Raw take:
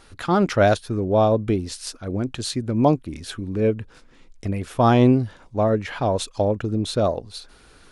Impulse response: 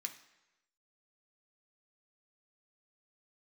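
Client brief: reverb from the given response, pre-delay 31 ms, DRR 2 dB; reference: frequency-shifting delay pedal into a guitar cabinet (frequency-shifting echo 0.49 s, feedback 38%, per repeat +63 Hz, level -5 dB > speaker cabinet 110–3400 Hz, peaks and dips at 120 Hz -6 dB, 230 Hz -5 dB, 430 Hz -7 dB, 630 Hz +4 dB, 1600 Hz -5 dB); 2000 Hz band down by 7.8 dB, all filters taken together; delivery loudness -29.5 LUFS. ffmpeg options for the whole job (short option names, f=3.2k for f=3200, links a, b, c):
-filter_complex "[0:a]equalizer=f=2k:t=o:g=-7,asplit=2[a][b];[1:a]atrim=start_sample=2205,adelay=31[c];[b][c]afir=irnorm=-1:irlink=0,volume=0.5dB[d];[a][d]amix=inputs=2:normalize=0,asplit=6[e][f][g][h][i][j];[f]adelay=490,afreqshift=63,volume=-5dB[k];[g]adelay=980,afreqshift=126,volume=-13.4dB[l];[h]adelay=1470,afreqshift=189,volume=-21.8dB[m];[i]adelay=1960,afreqshift=252,volume=-30.2dB[n];[j]adelay=2450,afreqshift=315,volume=-38.6dB[o];[e][k][l][m][n][o]amix=inputs=6:normalize=0,highpass=110,equalizer=f=120:t=q:w=4:g=-6,equalizer=f=230:t=q:w=4:g=-5,equalizer=f=430:t=q:w=4:g=-7,equalizer=f=630:t=q:w=4:g=4,equalizer=f=1.6k:t=q:w=4:g=-5,lowpass=f=3.4k:w=0.5412,lowpass=f=3.4k:w=1.3066,volume=-8dB"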